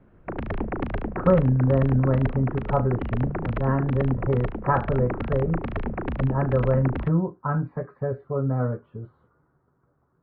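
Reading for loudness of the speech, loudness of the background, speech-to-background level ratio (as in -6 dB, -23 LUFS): -24.5 LUFS, -32.0 LUFS, 7.5 dB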